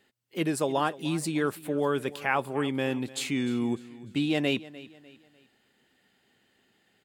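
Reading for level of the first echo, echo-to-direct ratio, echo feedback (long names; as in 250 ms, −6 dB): −18.5 dB, −18.0 dB, 38%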